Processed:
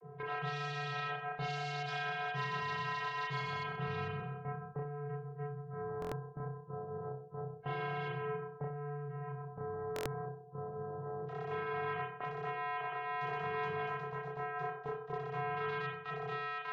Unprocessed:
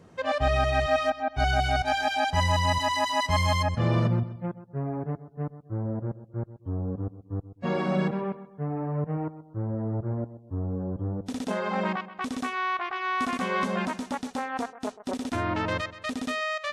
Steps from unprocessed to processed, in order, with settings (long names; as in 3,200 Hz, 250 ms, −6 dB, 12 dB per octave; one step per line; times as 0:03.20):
channel vocoder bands 32, square 145 Hz
dynamic equaliser 650 Hz, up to −5 dB, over −46 dBFS, Q 1.1
noise gate −47 dBFS, range −7 dB
low-pass that shuts in the quiet parts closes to 860 Hz, open at −20.5 dBFS
downward compressor 12 to 1, threshold −33 dBFS, peak gain reduction 18.5 dB
convolution reverb, pre-delay 30 ms, DRR −2.5 dB
buffer that repeats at 0:06.00/0:09.94, samples 1,024, times 4
every bin compressed towards the loudest bin 2 to 1
level +2.5 dB